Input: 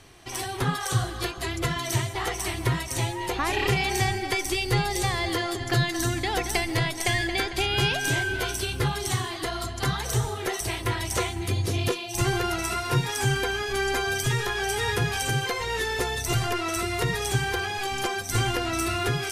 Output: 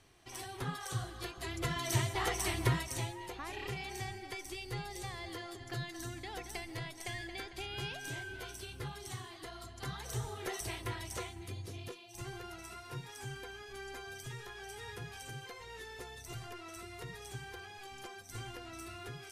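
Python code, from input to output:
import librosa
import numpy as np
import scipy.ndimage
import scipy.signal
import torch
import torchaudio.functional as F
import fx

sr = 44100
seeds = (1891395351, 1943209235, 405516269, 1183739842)

y = fx.gain(x, sr, db=fx.line((1.23, -13.0), (2.05, -5.0), (2.67, -5.0), (3.38, -17.0), (9.66, -17.0), (10.58, -10.0), (11.88, -20.0)))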